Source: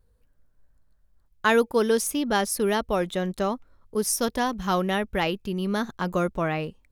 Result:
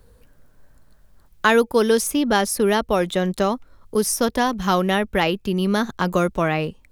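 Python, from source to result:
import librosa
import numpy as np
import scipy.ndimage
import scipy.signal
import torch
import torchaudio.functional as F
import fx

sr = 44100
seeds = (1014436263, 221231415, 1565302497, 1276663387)

y = fx.band_squash(x, sr, depth_pct=40)
y = y * 10.0 ** (5.0 / 20.0)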